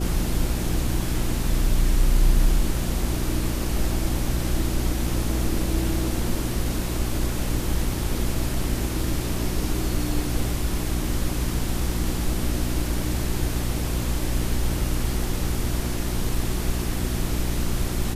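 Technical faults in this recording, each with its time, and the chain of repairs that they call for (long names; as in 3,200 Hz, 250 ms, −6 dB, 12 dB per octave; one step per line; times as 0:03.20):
mains hum 60 Hz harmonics 6 −28 dBFS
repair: hum removal 60 Hz, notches 6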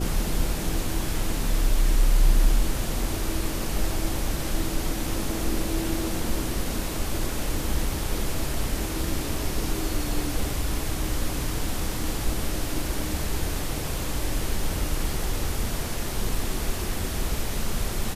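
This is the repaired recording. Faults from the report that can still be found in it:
none of them is left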